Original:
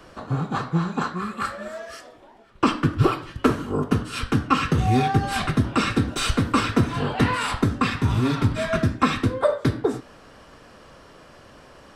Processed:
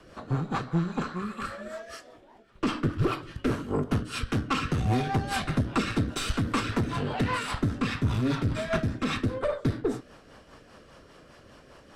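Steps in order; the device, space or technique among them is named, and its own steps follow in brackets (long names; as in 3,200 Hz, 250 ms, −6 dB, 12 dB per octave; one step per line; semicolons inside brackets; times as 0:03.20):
overdriven rotary cabinet (tube saturation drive 18 dB, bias 0.5; rotating-speaker cabinet horn 5 Hz)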